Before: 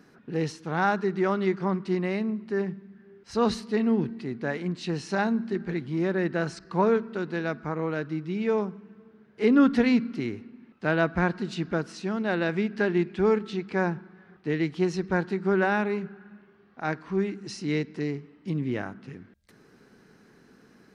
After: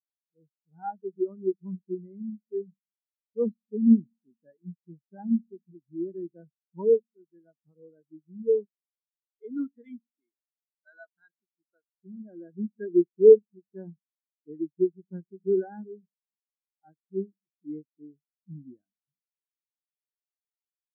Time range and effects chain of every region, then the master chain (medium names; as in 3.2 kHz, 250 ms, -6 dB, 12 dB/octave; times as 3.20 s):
8.65–11.90 s: tilt EQ +4.5 dB/octave + careless resampling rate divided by 8×, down filtered, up hold + hard clipper -20.5 dBFS
whole clip: level rider gain up to 9 dB; spectral contrast expander 4:1; trim -2 dB